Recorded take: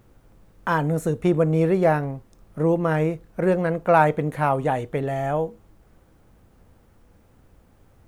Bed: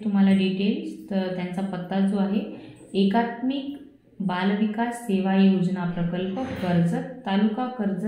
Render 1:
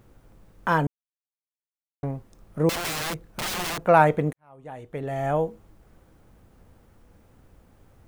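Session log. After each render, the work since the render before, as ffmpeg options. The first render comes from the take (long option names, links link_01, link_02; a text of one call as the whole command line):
ffmpeg -i in.wav -filter_complex "[0:a]asettb=1/sr,asplit=3[link_01][link_02][link_03];[link_01]atrim=end=2.694[link_04];[link_02]atrim=start=2.69:end=3.78,asetpts=PTS-STARTPTS,afade=type=in:duration=0.004:curve=qsin,afade=type=out:start_time=1.086:duration=0.004:curve=qsin,aeval=exprs='(mod(16.8*val(0)+1,2)-1)/16.8':channel_layout=same[link_05];[link_03]atrim=start=3.776[link_06];[link_04][link_05]acrossfade=duration=0.004:curve1=hsin:curve2=qsin[link_07];[link_07][link_06]acrossfade=duration=0.004:curve1=qsin:curve2=hsin,asplit=4[link_08][link_09][link_10][link_11];[link_08]atrim=end=0.87,asetpts=PTS-STARTPTS,afade=type=out:start_time=0.866:duration=0.004:curve=hsin[link_12];[link_09]atrim=start=0.87:end=2.03,asetpts=PTS-STARTPTS,volume=0[link_13];[link_10]atrim=start=2.03:end=4.33,asetpts=PTS-STARTPTS,afade=type=in:duration=0.004:curve=hsin,afade=type=out:start_time=2.296:duration=0.004:curve=hsin[link_14];[link_11]atrim=start=4.33,asetpts=PTS-STARTPTS,afade=type=in:duration=0.98:curve=qua[link_15];[link_12][link_13][link_14][link_15]concat=n=4:v=0:a=1" out.wav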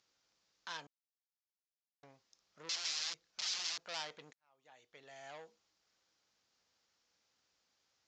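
ffmpeg -i in.wav -af "aresample=16000,asoftclip=type=tanh:threshold=-20dB,aresample=44100,bandpass=frequency=5000:width_type=q:width=2.2:csg=0" out.wav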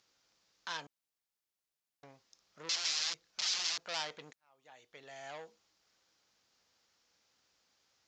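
ffmpeg -i in.wav -af "volume=4.5dB" out.wav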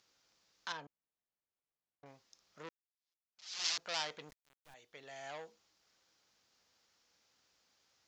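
ffmpeg -i in.wav -filter_complex "[0:a]asettb=1/sr,asplit=3[link_01][link_02][link_03];[link_01]atrim=end=0.724[link_04];[link_02]atrim=start=0.72:end=2.06,asetpts=PTS-STARTPTS,afade=type=in:duration=0.004:curve=qsin,afade=type=out:start_time=1.336:duration=0.004:curve=qsin,lowpass=frequency=1000:poles=1[link_05];[link_03]atrim=start=2.056[link_06];[link_04][link_05]acrossfade=duration=0.004:curve1=hsin:curve2=qsin[link_07];[link_07][link_06]acrossfade=duration=0.004:curve1=qsin:curve2=hsin,asettb=1/sr,asplit=3[link_08][link_09][link_10];[link_08]atrim=end=4.294[link_11];[link_09]atrim=start=4.29:end=4.74,asetpts=PTS-STARTPTS,afade=type=in:duration=0.004:curve=qsin,afade=type=out:start_time=0.446:duration=0.004:curve=qsin,acrusher=bits=7:dc=4:mix=0:aa=0.000001[link_12];[link_10]atrim=start=4.736[link_13];[link_11][link_12]acrossfade=duration=0.004:curve1=hsin:curve2=qsin[link_14];[link_14][link_13]acrossfade=duration=0.004:curve1=qsin:curve2=hsin,asplit=2[link_15][link_16];[link_15]atrim=end=2.69,asetpts=PTS-STARTPTS,afade=type=out:start_time=2.686:duration=0.004:curve=hsin[link_17];[link_16]atrim=start=2.69,asetpts=PTS-STARTPTS,afade=type=in:duration=0.95:curve=exp[link_18];[link_17][link_18]concat=n=2:v=0:a=1" out.wav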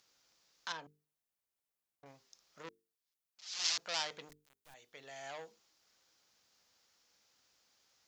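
ffmpeg -i in.wav -af "highshelf=frequency=7100:gain=6.5,bandreject=frequency=50:width_type=h:width=6,bandreject=frequency=100:width_type=h:width=6,bandreject=frequency=150:width_type=h:width=6,bandreject=frequency=200:width_type=h:width=6,bandreject=frequency=250:width_type=h:width=6,bandreject=frequency=300:width_type=h:width=6,bandreject=frequency=350:width_type=h:width=6,bandreject=frequency=400:width_type=h:width=6,bandreject=frequency=450:width_type=h:width=6" out.wav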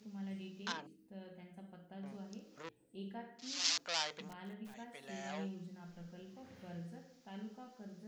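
ffmpeg -i in.wav -i bed.wav -filter_complex "[1:a]volume=-26dB[link_01];[0:a][link_01]amix=inputs=2:normalize=0" out.wav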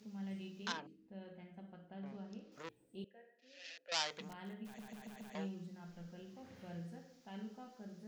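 ffmpeg -i in.wav -filter_complex "[0:a]asettb=1/sr,asplit=3[link_01][link_02][link_03];[link_01]atrim=end=0.794[link_04];[link_02]atrim=start=0.79:end=2.52,asetpts=PTS-STARTPTS,afade=type=in:duration=0.004:curve=qsin,afade=type=out:start_time=1.726:duration=0.004:curve=qsin,lowpass=3900[link_05];[link_03]atrim=start=2.516[link_06];[link_04][link_05]acrossfade=duration=0.004:curve1=hsin:curve2=qsin[link_07];[link_07][link_06]acrossfade=duration=0.004:curve1=qsin:curve2=hsin,asettb=1/sr,asplit=3[link_08][link_09][link_10];[link_08]atrim=end=3.044[link_11];[link_09]atrim=start=3.04:end=3.92,asetpts=PTS-STARTPTS,afade=type=in:duration=0.004:curve=qsin,afade=type=out:start_time=0.876:duration=0.004:curve=qsin,asplit=3[link_12][link_13][link_14];[link_12]bandpass=frequency=530:width_type=q:width=8,volume=0dB[link_15];[link_13]bandpass=frequency=1840:width_type=q:width=8,volume=-6dB[link_16];[link_14]bandpass=frequency=2480:width_type=q:width=8,volume=-9dB[link_17];[link_15][link_16][link_17]amix=inputs=3:normalize=0[link_18];[link_10]atrim=start=3.916[link_19];[link_11][link_18]acrossfade=duration=0.004:curve1=hsin:curve2=qsin[link_20];[link_20][link_19]acrossfade=duration=0.004:curve1=qsin:curve2=hsin,asplit=6[link_21][link_22][link_23][link_24][link_25][link_26];[link_21]atrim=end=4.792[link_27];[link_22]atrim=start=4.648:end=4.792[link_28];[link_23]atrim=start=4.648:end=4.792[link_29];[link_24]atrim=start=4.648:end=4.792[link_30];[link_25]atrim=start=4.648:end=4.792[link_31];[link_26]atrim=start=5.348[link_32];[link_27][link_28]acrossfade=duration=0.004:curve1=hsin:curve2=hsin[link_33];[link_33][link_29]acrossfade=duration=0.004:curve1=hsin:curve2=hsin[link_34];[link_34][link_30]acrossfade=duration=0.004:curve1=hsin:curve2=hsin[link_35];[link_35][link_31]acrossfade=duration=0.004:curve1=hsin:curve2=hsin[link_36];[link_36][link_32]acrossfade=duration=0.004:curve1=hsin:curve2=hsin" out.wav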